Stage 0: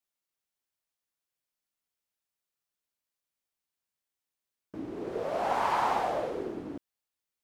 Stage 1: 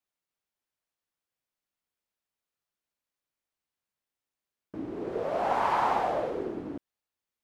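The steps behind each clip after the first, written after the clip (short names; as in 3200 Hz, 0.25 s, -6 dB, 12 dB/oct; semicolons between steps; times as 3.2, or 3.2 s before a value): high shelf 3800 Hz -7.5 dB; gain +2 dB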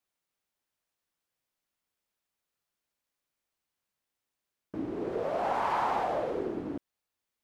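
in parallel at +2 dB: limiter -25 dBFS, peak gain reduction 9.5 dB; on the sum: vocal rider within 3 dB 2 s; gain -7 dB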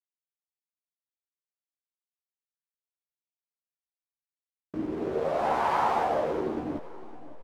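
backlash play -41 dBFS; doubler 13 ms -5 dB; feedback echo 0.559 s, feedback 39%, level -17.5 dB; gain +2.5 dB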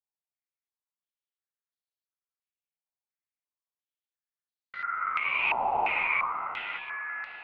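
darkening echo 0.776 s, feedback 57%, low-pass 1200 Hz, level -10.5 dB; ring modulator 1700 Hz; stepped low-pass 2.9 Hz 860–4200 Hz; gain -5 dB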